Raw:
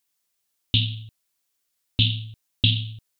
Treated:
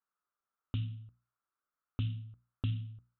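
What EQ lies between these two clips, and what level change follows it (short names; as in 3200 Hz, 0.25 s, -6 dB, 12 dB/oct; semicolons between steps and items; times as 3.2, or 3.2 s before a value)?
ladder low-pass 1400 Hz, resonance 75%; notches 60/120/180/240/300 Hz; +2.0 dB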